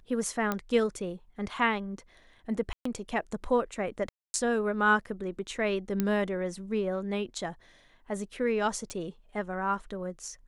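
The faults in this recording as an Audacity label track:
0.520000	0.520000	pop -15 dBFS
2.730000	2.850000	dropout 124 ms
4.090000	4.340000	dropout 250 ms
6.000000	6.000000	pop -14 dBFS
8.900000	8.900000	pop -23 dBFS

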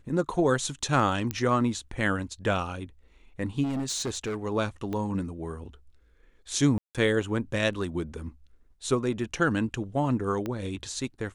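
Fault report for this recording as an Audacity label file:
1.310000	1.310000	pop -15 dBFS
3.630000	4.370000	clipped -26.5 dBFS
4.930000	4.930000	pop -21 dBFS
6.780000	6.950000	dropout 167 ms
10.460000	10.460000	pop -19 dBFS

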